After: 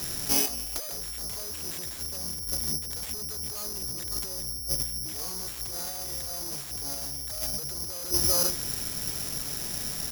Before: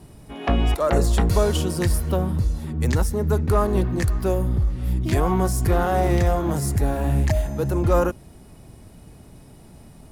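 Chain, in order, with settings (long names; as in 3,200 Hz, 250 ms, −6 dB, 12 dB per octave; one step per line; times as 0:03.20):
brickwall limiter −15.5 dBFS, peak gain reduction 8 dB
low-shelf EQ 180 Hz −4 dB
mains-hum notches 50/100/150/200/250/300/350 Hz
single-tap delay 392 ms −13.5 dB
hard clipping −27.5 dBFS, distortion −9 dB
high-shelf EQ 5,700 Hz +8 dB
compressor whose output falls as the input rises −36 dBFS, ratio −0.5
bad sample-rate conversion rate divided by 8×, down none, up zero stuff
level −2.5 dB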